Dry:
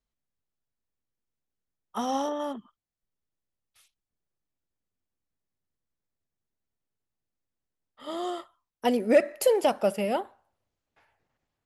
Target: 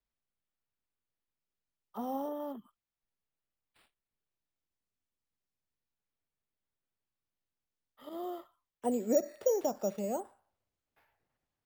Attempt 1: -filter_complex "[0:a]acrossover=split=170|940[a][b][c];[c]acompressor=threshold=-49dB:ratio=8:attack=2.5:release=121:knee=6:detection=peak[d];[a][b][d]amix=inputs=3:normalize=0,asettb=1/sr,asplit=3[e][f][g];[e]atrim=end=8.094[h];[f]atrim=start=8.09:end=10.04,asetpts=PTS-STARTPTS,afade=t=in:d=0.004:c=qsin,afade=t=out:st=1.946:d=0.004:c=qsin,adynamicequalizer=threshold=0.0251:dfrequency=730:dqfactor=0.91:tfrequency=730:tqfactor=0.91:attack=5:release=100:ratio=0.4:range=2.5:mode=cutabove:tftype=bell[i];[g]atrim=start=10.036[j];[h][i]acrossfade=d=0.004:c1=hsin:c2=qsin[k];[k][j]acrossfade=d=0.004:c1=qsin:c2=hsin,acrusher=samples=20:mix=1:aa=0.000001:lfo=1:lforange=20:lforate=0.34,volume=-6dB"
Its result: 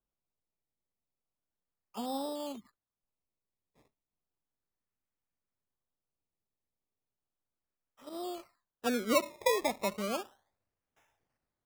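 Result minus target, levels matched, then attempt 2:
decimation with a swept rate: distortion +15 dB
-filter_complex "[0:a]acrossover=split=170|940[a][b][c];[c]acompressor=threshold=-49dB:ratio=8:attack=2.5:release=121:knee=6:detection=peak[d];[a][b][d]amix=inputs=3:normalize=0,asettb=1/sr,asplit=3[e][f][g];[e]atrim=end=8.094[h];[f]atrim=start=8.09:end=10.04,asetpts=PTS-STARTPTS,afade=t=in:d=0.004:c=qsin,afade=t=out:st=1.946:d=0.004:c=qsin,adynamicequalizer=threshold=0.0251:dfrequency=730:dqfactor=0.91:tfrequency=730:tqfactor=0.91:attack=5:release=100:ratio=0.4:range=2.5:mode=cutabove:tftype=bell[i];[g]atrim=start=10.036[j];[h][i]acrossfade=d=0.004:c1=hsin:c2=qsin[k];[k][j]acrossfade=d=0.004:c1=qsin:c2=hsin,acrusher=samples=5:mix=1:aa=0.000001:lfo=1:lforange=5:lforate=0.34,volume=-6dB"

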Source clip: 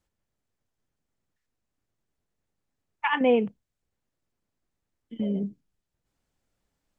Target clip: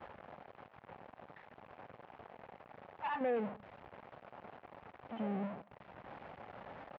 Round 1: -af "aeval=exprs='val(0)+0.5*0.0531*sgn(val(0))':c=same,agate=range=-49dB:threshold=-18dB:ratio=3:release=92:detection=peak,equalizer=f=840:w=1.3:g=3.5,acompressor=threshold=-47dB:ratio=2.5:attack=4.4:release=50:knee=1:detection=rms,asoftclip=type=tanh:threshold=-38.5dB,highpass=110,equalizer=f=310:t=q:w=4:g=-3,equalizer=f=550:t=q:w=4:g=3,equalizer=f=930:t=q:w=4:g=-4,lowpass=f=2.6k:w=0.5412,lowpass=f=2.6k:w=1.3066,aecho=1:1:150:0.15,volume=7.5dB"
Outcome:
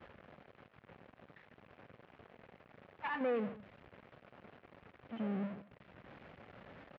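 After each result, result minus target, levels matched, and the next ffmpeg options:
1000 Hz band -7.0 dB; echo-to-direct +6 dB
-af "aeval=exprs='val(0)+0.5*0.0531*sgn(val(0))':c=same,agate=range=-49dB:threshold=-18dB:ratio=3:release=92:detection=peak,equalizer=f=840:w=1.3:g=14.5,acompressor=threshold=-47dB:ratio=2.5:attack=4.4:release=50:knee=1:detection=rms,asoftclip=type=tanh:threshold=-38.5dB,highpass=110,equalizer=f=310:t=q:w=4:g=-3,equalizer=f=550:t=q:w=4:g=3,equalizer=f=930:t=q:w=4:g=-4,lowpass=f=2.6k:w=0.5412,lowpass=f=2.6k:w=1.3066,aecho=1:1:150:0.15,volume=7.5dB"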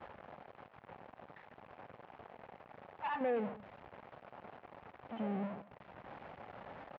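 echo-to-direct +6 dB
-af "aeval=exprs='val(0)+0.5*0.0531*sgn(val(0))':c=same,agate=range=-49dB:threshold=-18dB:ratio=3:release=92:detection=peak,equalizer=f=840:w=1.3:g=14.5,acompressor=threshold=-47dB:ratio=2.5:attack=4.4:release=50:knee=1:detection=rms,asoftclip=type=tanh:threshold=-38.5dB,highpass=110,equalizer=f=310:t=q:w=4:g=-3,equalizer=f=550:t=q:w=4:g=3,equalizer=f=930:t=q:w=4:g=-4,lowpass=f=2.6k:w=0.5412,lowpass=f=2.6k:w=1.3066,aecho=1:1:150:0.075,volume=7.5dB"

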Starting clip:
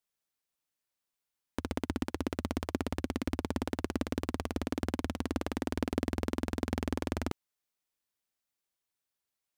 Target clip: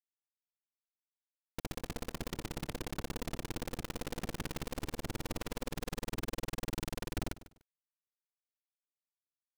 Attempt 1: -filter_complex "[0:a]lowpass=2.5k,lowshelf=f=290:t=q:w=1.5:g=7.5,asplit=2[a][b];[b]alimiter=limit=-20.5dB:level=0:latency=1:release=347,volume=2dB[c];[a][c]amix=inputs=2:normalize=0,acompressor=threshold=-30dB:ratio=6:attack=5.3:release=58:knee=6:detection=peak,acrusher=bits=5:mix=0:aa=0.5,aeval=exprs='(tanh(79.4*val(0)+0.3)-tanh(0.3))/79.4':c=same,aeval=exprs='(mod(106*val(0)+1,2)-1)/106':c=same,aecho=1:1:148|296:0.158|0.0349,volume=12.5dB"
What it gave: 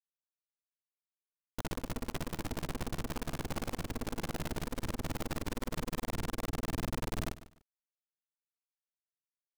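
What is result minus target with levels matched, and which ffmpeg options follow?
compressor: peak gain reduction -5 dB
-filter_complex "[0:a]lowpass=2.5k,lowshelf=f=290:t=q:w=1.5:g=7.5,asplit=2[a][b];[b]alimiter=limit=-20.5dB:level=0:latency=1:release=347,volume=2dB[c];[a][c]amix=inputs=2:normalize=0,acompressor=threshold=-36dB:ratio=6:attack=5.3:release=58:knee=6:detection=peak,acrusher=bits=5:mix=0:aa=0.5,aeval=exprs='(tanh(79.4*val(0)+0.3)-tanh(0.3))/79.4':c=same,aeval=exprs='(mod(106*val(0)+1,2)-1)/106':c=same,aecho=1:1:148|296:0.158|0.0349,volume=12.5dB"

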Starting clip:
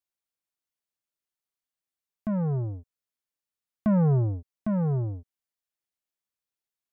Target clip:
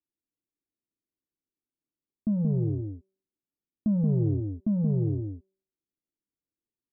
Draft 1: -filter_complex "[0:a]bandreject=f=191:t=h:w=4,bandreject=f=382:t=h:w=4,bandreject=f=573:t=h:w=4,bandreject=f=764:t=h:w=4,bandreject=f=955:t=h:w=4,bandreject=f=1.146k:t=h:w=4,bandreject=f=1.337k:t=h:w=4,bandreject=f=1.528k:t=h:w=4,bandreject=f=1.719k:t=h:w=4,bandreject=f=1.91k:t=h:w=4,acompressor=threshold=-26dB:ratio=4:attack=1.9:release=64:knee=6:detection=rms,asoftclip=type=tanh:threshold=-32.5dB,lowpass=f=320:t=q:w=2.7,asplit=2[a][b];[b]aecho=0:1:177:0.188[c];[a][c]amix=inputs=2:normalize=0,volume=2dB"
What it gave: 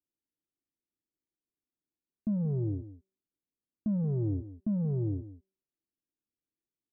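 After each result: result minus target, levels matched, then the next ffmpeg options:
echo-to-direct -9.5 dB; soft clip: distortion +8 dB
-filter_complex "[0:a]bandreject=f=191:t=h:w=4,bandreject=f=382:t=h:w=4,bandreject=f=573:t=h:w=4,bandreject=f=764:t=h:w=4,bandreject=f=955:t=h:w=4,bandreject=f=1.146k:t=h:w=4,bandreject=f=1.337k:t=h:w=4,bandreject=f=1.528k:t=h:w=4,bandreject=f=1.719k:t=h:w=4,bandreject=f=1.91k:t=h:w=4,acompressor=threshold=-26dB:ratio=4:attack=1.9:release=64:knee=6:detection=rms,asoftclip=type=tanh:threshold=-32.5dB,lowpass=f=320:t=q:w=2.7,asplit=2[a][b];[b]aecho=0:1:177:0.562[c];[a][c]amix=inputs=2:normalize=0,volume=2dB"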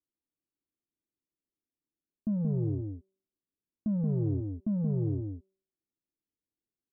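soft clip: distortion +8 dB
-filter_complex "[0:a]bandreject=f=191:t=h:w=4,bandreject=f=382:t=h:w=4,bandreject=f=573:t=h:w=4,bandreject=f=764:t=h:w=4,bandreject=f=955:t=h:w=4,bandreject=f=1.146k:t=h:w=4,bandreject=f=1.337k:t=h:w=4,bandreject=f=1.528k:t=h:w=4,bandreject=f=1.719k:t=h:w=4,bandreject=f=1.91k:t=h:w=4,acompressor=threshold=-26dB:ratio=4:attack=1.9:release=64:knee=6:detection=rms,asoftclip=type=tanh:threshold=-25.5dB,lowpass=f=320:t=q:w=2.7,asplit=2[a][b];[b]aecho=0:1:177:0.562[c];[a][c]amix=inputs=2:normalize=0,volume=2dB"

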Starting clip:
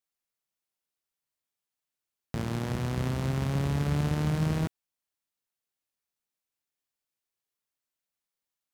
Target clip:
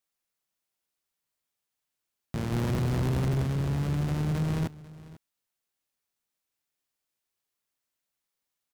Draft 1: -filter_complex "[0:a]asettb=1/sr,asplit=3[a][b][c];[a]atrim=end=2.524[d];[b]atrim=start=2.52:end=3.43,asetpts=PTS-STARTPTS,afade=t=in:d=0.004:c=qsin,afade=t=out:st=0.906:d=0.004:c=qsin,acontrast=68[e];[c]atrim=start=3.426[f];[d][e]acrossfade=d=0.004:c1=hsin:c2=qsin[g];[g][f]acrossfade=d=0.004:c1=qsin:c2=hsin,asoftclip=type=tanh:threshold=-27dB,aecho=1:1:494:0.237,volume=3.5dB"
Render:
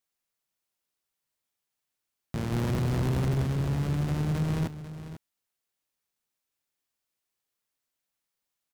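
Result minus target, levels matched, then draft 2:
echo-to-direct +6.5 dB
-filter_complex "[0:a]asettb=1/sr,asplit=3[a][b][c];[a]atrim=end=2.524[d];[b]atrim=start=2.52:end=3.43,asetpts=PTS-STARTPTS,afade=t=in:d=0.004:c=qsin,afade=t=out:st=0.906:d=0.004:c=qsin,acontrast=68[e];[c]atrim=start=3.426[f];[d][e]acrossfade=d=0.004:c1=hsin:c2=qsin[g];[g][f]acrossfade=d=0.004:c1=qsin:c2=hsin,asoftclip=type=tanh:threshold=-27dB,aecho=1:1:494:0.112,volume=3.5dB"

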